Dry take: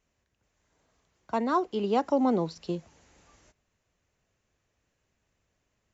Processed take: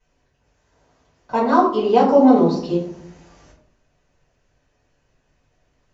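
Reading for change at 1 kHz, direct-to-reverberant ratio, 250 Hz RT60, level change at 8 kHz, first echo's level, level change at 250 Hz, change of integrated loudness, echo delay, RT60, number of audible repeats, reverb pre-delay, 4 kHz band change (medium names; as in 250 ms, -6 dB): +12.0 dB, -11.0 dB, 0.90 s, no reading, no echo, +12.5 dB, +12.0 dB, no echo, 0.65 s, no echo, 4 ms, +8.0 dB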